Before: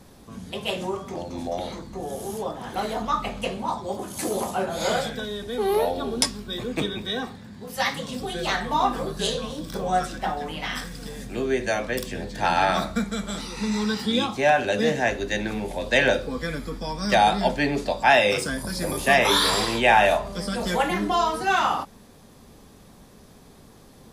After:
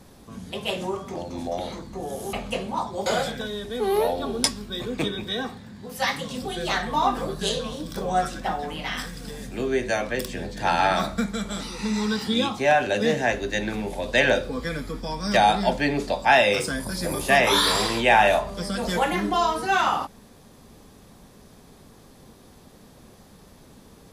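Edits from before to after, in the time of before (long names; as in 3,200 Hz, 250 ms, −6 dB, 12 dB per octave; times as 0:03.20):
0:02.33–0:03.24: remove
0:03.97–0:04.84: remove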